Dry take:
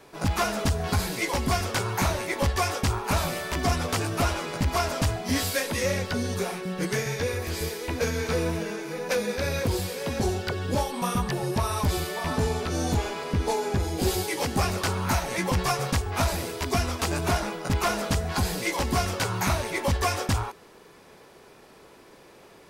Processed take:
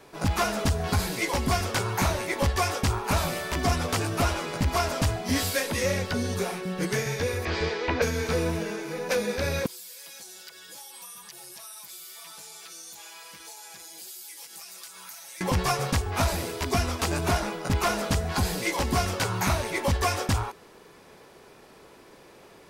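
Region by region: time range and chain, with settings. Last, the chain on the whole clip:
7.45–8.02 s: low-pass 5.2 kHz 24 dB/octave + peaking EQ 1.2 kHz +8 dB 2.9 oct
9.66–15.41 s: differentiator + comb 6 ms, depth 76% + compression 5:1, threshold -40 dBFS
whole clip: none

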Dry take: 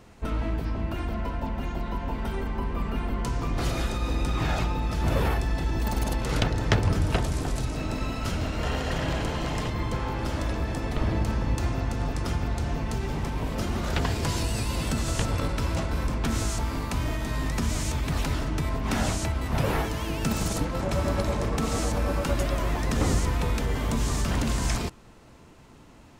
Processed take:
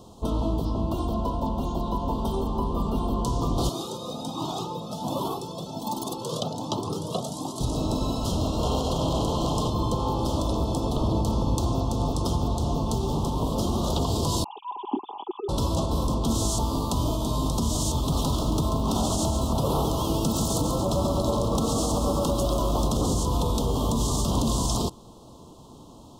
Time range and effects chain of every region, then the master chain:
3.69–7.61 s: high-pass 150 Hz 24 dB/octave + Shepard-style flanger rising 1.3 Hz
14.44–15.49 s: formants replaced by sine waves + vowel filter u + comb 5 ms, depth 61%
17.97–23.11 s: peaking EQ 1.3 kHz +4 dB 0.23 oct + bit-crushed delay 137 ms, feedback 55%, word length 9-bit, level -8 dB
whole clip: Chebyshev band-stop 1.1–3.3 kHz, order 3; bass shelf 85 Hz -8.5 dB; peak limiter -22 dBFS; trim +6.5 dB

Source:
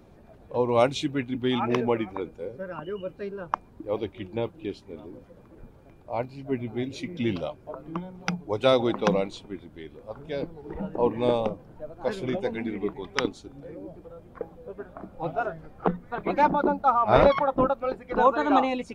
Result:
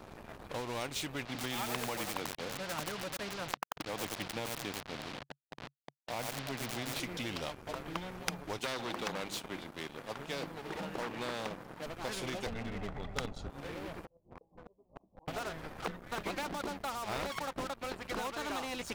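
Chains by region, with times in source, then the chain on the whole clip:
1.25–7.00 s: send-on-delta sampling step -41.5 dBFS + cabinet simulation 140–4300 Hz, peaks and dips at 140 Hz +8 dB, 380 Hz -9 dB, 720 Hz +5 dB + bit-crushed delay 90 ms, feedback 35%, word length 6-bit, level -8 dB
8.58–11.86 s: high-pass 130 Hz 24 dB/octave + hum notches 50/100/150/200/250/300/350 Hz + transformer saturation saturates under 1.8 kHz
12.46–13.50 s: tilt EQ -4.5 dB/octave + comb 1.5 ms, depth 83%
14.05–15.28 s: steep low-pass 1.1 kHz 96 dB/octave + inverted gate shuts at -36 dBFS, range -30 dB + compression 12:1, threshold -50 dBFS
whole clip: compression 6:1, threshold -30 dBFS; waveshaping leveller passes 2; spectrum-flattening compressor 2:1; trim -3 dB

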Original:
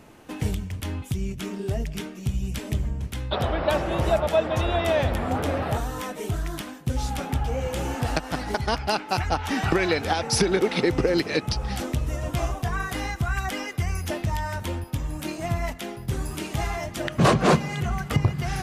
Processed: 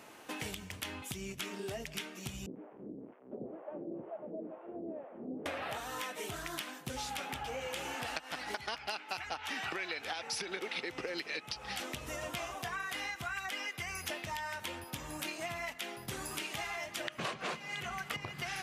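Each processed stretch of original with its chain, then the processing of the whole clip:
2.46–5.46 s: one-bit delta coder 16 kbps, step -21.5 dBFS + Butterworth band-pass 270 Hz, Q 1.1 + harmonic tremolo 2.1 Hz, depth 100%, crossover 600 Hz
whole clip: dynamic bell 2.6 kHz, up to +7 dB, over -44 dBFS, Q 0.98; high-pass 750 Hz 6 dB/octave; compression 6:1, threshold -38 dBFS; trim +1 dB

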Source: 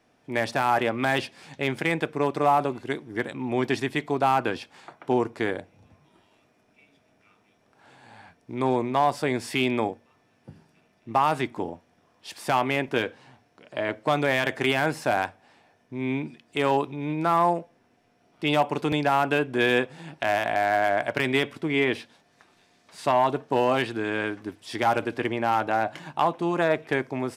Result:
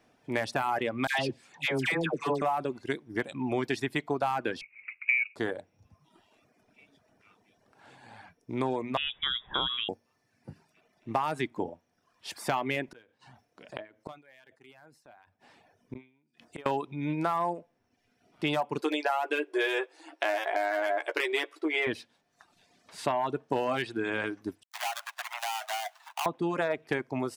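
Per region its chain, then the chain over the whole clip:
1.07–2.42 s: dynamic bell 4.9 kHz, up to +4 dB, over -43 dBFS, Q 0.78 + phase dispersion lows, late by 120 ms, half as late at 990 Hz
4.61–5.36 s: median filter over 25 samples + resonant low shelf 660 Hz +8 dB, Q 3 + frequency inversion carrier 2.7 kHz
8.97–9.89 s: peaking EQ 720 Hz -12.5 dB 1.3 oct + frequency inversion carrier 3.6 kHz
12.88–16.66 s: inverted gate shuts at -28 dBFS, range -31 dB + decay stretcher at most 98 dB/s
18.81–21.87 s: brick-wall FIR high-pass 290 Hz + doubling 13 ms -5 dB
24.63–26.26 s: dead-time distortion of 0.28 ms + steep high-pass 660 Hz 96 dB/octave + compression 5:1, threshold -28 dBFS
whole clip: reverb removal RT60 0.9 s; compression, threshold -25 dBFS

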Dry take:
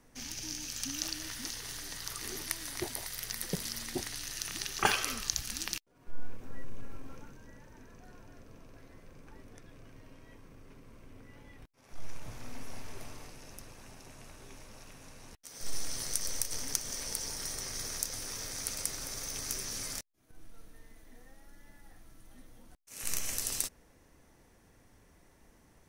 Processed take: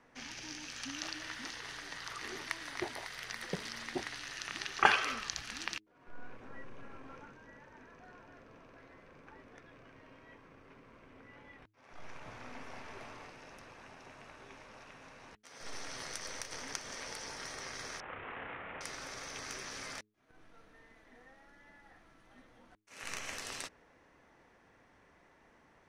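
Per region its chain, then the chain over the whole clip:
18.00–18.81 s: CVSD coder 16 kbps + doubling 31 ms -4 dB
whole clip: low-pass 1.8 kHz 12 dB/octave; tilt EQ +3.5 dB/octave; de-hum 105.9 Hz, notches 4; trim +4 dB

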